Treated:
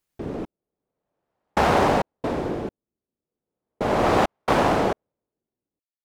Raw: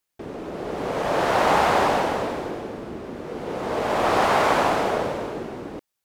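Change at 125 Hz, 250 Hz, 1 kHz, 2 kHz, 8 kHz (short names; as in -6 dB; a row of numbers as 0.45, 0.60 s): +3.5, +1.5, -2.5, -3.5, -4.0 dB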